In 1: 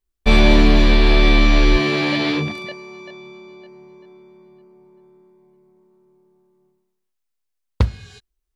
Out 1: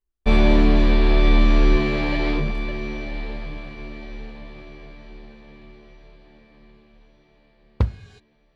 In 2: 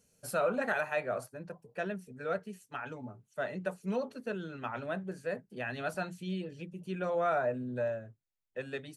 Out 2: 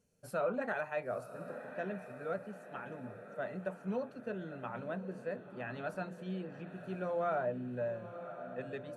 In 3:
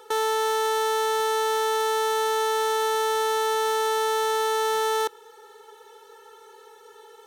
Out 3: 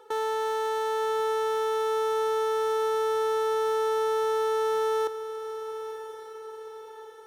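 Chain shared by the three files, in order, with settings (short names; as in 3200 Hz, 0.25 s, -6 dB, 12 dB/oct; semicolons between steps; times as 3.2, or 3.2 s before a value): high shelf 2400 Hz -10 dB; on a send: diffused feedback echo 1.041 s, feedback 49%, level -11 dB; on the sum: gain -3 dB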